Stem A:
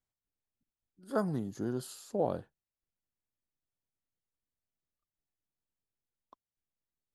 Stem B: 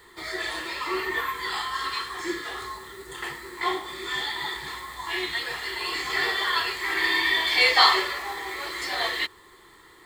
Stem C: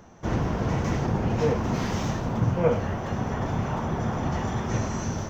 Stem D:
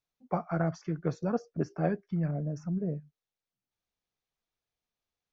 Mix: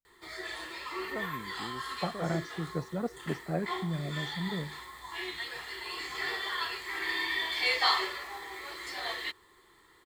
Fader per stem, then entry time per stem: −9.0 dB, −9.0 dB, muted, −3.5 dB; 0.00 s, 0.05 s, muted, 1.70 s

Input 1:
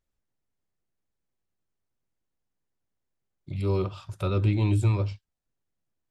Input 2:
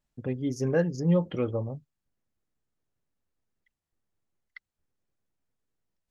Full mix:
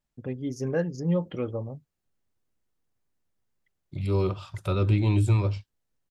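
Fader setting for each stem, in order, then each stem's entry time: +1.0, −2.0 decibels; 0.45, 0.00 seconds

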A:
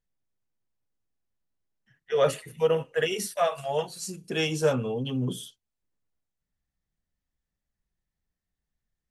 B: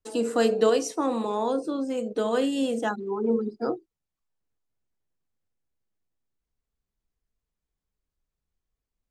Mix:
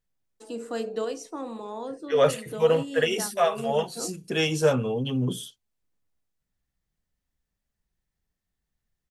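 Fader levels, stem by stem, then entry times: +2.5, −9.0 decibels; 0.00, 0.35 seconds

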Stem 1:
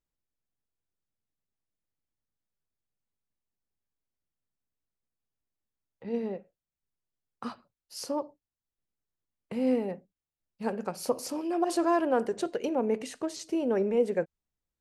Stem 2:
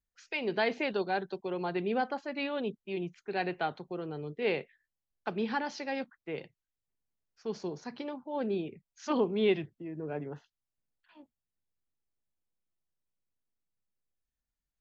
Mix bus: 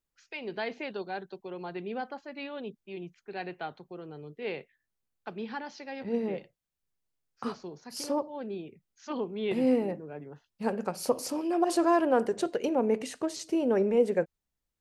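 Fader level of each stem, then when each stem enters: +1.5, −5.0 decibels; 0.00, 0.00 seconds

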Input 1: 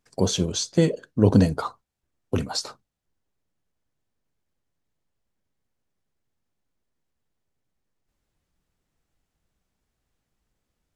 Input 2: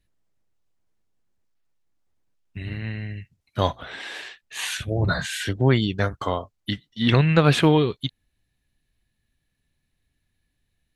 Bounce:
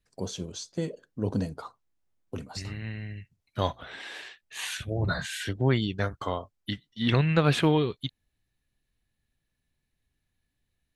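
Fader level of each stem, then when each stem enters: −12.0, −5.5 decibels; 0.00, 0.00 seconds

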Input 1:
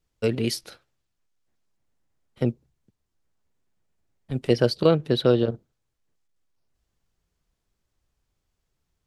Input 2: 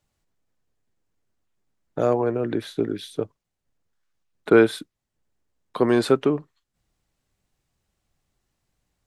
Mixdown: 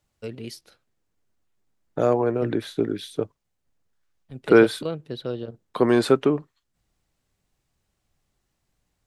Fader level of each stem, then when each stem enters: −11.0, +0.5 decibels; 0.00, 0.00 seconds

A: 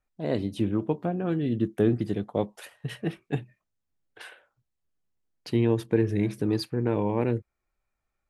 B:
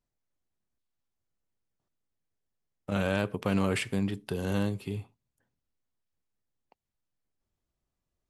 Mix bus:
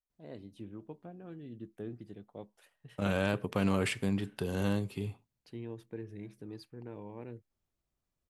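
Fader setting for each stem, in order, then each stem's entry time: −19.5, −2.0 decibels; 0.00, 0.10 seconds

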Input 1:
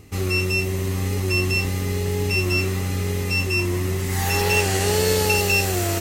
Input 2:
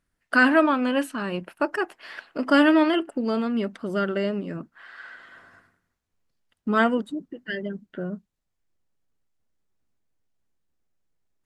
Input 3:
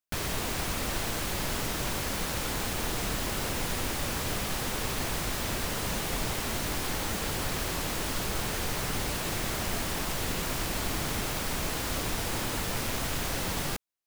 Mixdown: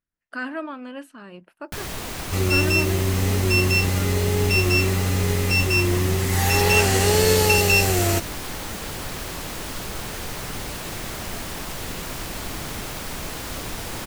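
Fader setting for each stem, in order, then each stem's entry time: +2.0, −12.5, 0.0 decibels; 2.20, 0.00, 1.60 seconds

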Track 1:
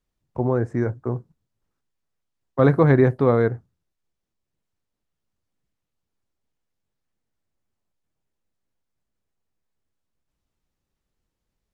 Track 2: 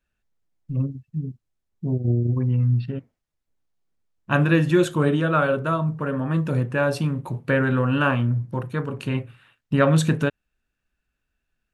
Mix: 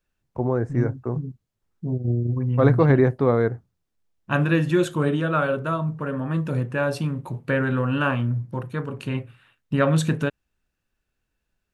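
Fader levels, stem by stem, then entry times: −1.5, −2.0 decibels; 0.00, 0.00 seconds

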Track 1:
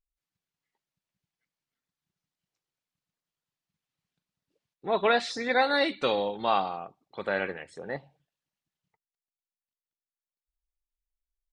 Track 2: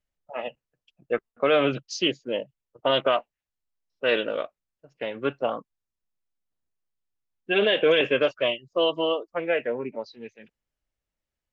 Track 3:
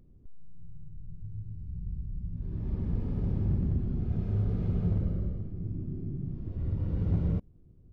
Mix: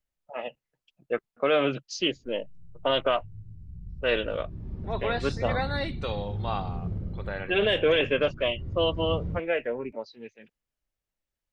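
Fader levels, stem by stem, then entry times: −6.5, −2.5, −4.5 decibels; 0.00, 0.00, 2.00 seconds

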